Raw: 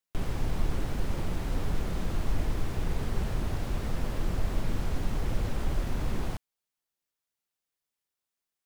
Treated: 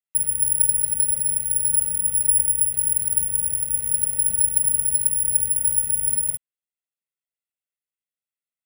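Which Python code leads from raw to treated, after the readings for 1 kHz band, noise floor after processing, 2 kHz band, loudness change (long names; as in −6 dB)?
below −10 dB, below −85 dBFS, can't be measured, +16.0 dB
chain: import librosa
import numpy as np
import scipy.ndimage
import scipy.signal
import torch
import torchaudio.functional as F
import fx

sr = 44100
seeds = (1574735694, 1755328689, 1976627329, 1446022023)

y = fx.low_shelf(x, sr, hz=370.0, db=4.0)
y = fx.fixed_phaser(y, sr, hz=2300.0, stages=4)
y = y + 0.77 * np.pad(y, (int(1.5 * sr / 1000.0), 0))[:len(y)]
y = (np.kron(scipy.signal.resample_poly(y, 1, 4), np.eye(4)[0]) * 4)[:len(y)]
y = fx.highpass(y, sr, hz=270.0, slope=6)
y = y * librosa.db_to_amplitude(-8.0)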